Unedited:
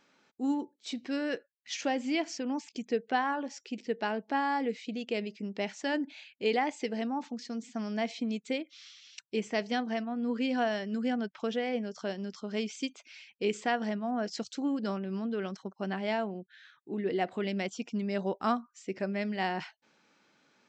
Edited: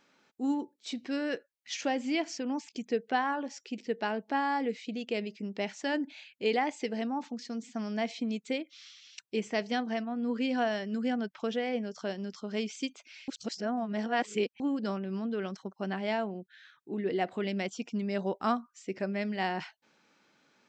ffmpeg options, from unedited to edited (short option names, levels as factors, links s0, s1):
-filter_complex "[0:a]asplit=3[s0][s1][s2];[s0]atrim=end=13.282[s3];[s1]atrim=start=13.278:end=14.602,asetpts=PTS-STARTPTS,areverse[s4];[s2]atrim=start=14.598[s5];[s3][s4]acrossfade=d=0.004:c1=hsin:c2=hsin[s6];[s6][s5]acrossfade=d=0.004:c1=hsin:c2=hsin"